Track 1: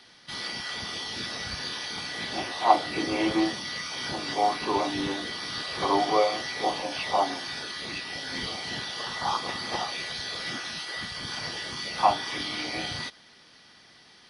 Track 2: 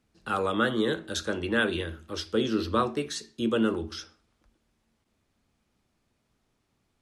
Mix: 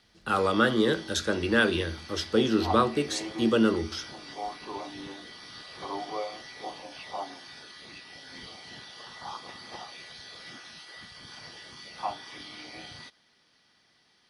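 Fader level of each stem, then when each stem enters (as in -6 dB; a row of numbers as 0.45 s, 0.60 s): -11.5 dB, +2.5 dB; 0.00 s, 0.00 s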